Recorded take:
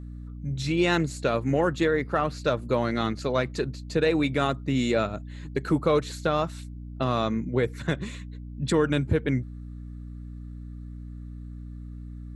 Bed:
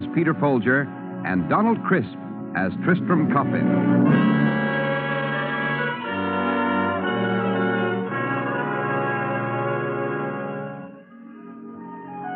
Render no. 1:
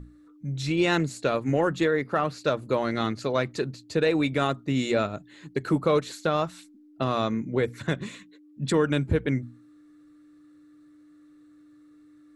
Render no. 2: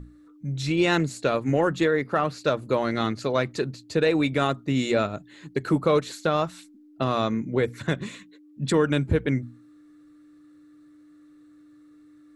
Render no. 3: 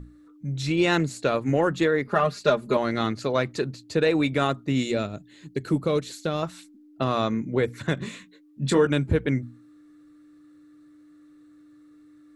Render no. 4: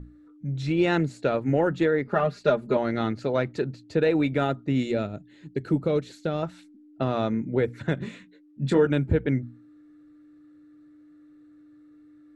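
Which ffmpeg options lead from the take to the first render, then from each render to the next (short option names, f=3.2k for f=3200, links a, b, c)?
-af "bandreject=f=60:t=h:w=6,bandreject=f=120:t=h:w=6,bandreject=f=180:t=h:w=6,bandreject=f=240:t=h:w=6"
-af "volume=1.5dB"
-filter_complex "[0:a]asettb=1/sr,asplit=3[a][b][c];[a]atrim=end=2.074[d];[b]atrim=start=2.07:end=2.77,asetpts=PTS-STARTPTS,afade=t=in:d=0.004:c=qsin,afade=t=out:st=0.696:d=0.004:c=qsin,aecho=1:1:4.9:0.83,atrim=end_sample=30870[e];[c]atrim=start=2.766[f];[d][e]acrossfade=d=0.004:c1=hsin:c2=qsin[g];[g][f]acrossfade=d=0.004:c1=qsin:c2=hsin,asettb=1/sr,asplit=3[h][i][j];[h]atrim=end=4.834[k];[i]atrim=start=4.83:end=6.43,asetpts=PTS-STARTPTS,afade=t=in:d=0.004:c=qsin,afade=t=out:st=1.596:d=0.004:c=qsin,equalizer=f=1.1k:t=o:w=2.1:g=-8[l];[j]atrim=start=6.426[m];[k][l]acrossfade=d=0.004:c1=hsin:c2=qsin[n];[n][m]acrossfade=d=0.004:c1=qsin:c2=hsin,asettb=1/sr,asplit=3[o][p][q];[o]atrim=end=7.954[r];[p]atrim=start=7.95:end=8.87,asetpts=PTS-STARTPTS,afade=t=in:d=0.004:c=qsin,afade=t=out:st=0.916:d=0.004:c=qsin,asplit=2[s][t];[t]adelay=22,volume=-6.5dB[u];[s][u]amix=inputs=2:normalize=0,atrim=end_sample=40572[v];[q]atrim=start=8.866[w];[r][v]acrossfade=d=0.004:c1=hsin:c2=qsin[x];[x][w]acrossfade=d=0.004:c1=qsin:c2=hsin"
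-af "lowpass=f=1.8k:p=1,bandreject=f=1.1k:w=5.9"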